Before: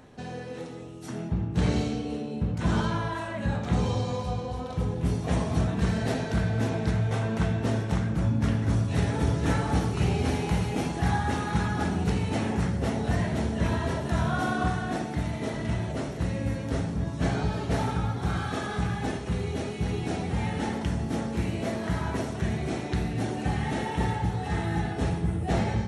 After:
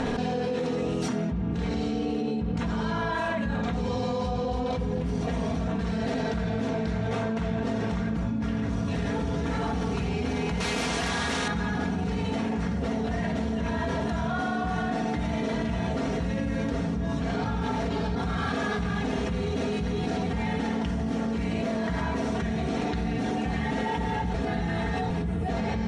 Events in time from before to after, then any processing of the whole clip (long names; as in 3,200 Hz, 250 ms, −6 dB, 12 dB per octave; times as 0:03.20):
0:10.60–0:11.48: every bin compressed towards the loudest bin 2 to 1
0:17.44–0:18.15: reverse
0:24.34–0:25.10: reverse
whole clip: low-pass filter 5,700 Hz 12 dB per octave; comb filter 4.3 ms, depth 61%; envelope flattener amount 100%; level −8 dB